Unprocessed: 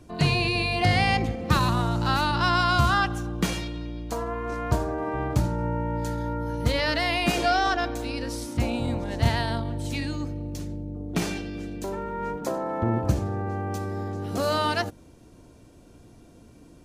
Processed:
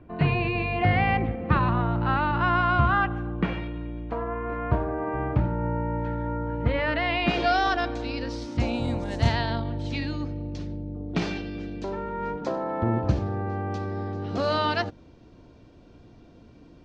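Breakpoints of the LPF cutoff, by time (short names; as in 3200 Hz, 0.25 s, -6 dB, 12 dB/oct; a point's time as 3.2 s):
LPF 24 dB/oct
6.83 s 2500 Hz
7.58 s 5000 Hz
8.45 s 5000 Hz
9.14 s 9500 Hz
9.39 s 4800 Hz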